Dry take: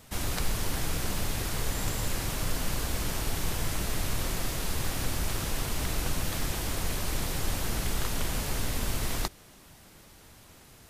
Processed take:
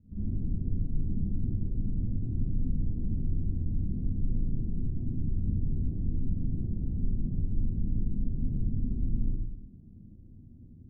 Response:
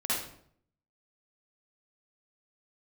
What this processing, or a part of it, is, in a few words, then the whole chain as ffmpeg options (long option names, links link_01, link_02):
club heard from the street: -filter_complex "[0:a]alimiter=limit=-24dB:level=0:latency=1:release=50,lowpass=frequency=250:width=0.5412,lowpass=frequency=250:width=1.3066[link_01];[1:a]atrim=start_sample=2205[link_02];[link_01][link_02]afir=irnorm=-1:irlink=0"